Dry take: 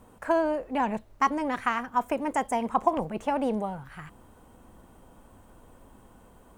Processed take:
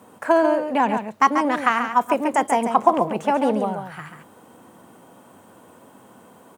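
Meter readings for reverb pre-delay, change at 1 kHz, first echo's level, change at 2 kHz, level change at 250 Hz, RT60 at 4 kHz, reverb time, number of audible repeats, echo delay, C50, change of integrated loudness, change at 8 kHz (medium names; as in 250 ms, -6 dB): no reverb, +8.0 dB, -7.5 dB, +8.0 dB, +7.0 dB, no reverb, no reverb, 1, 138 ms, no reverb, +7.5 dB, +8.0 dB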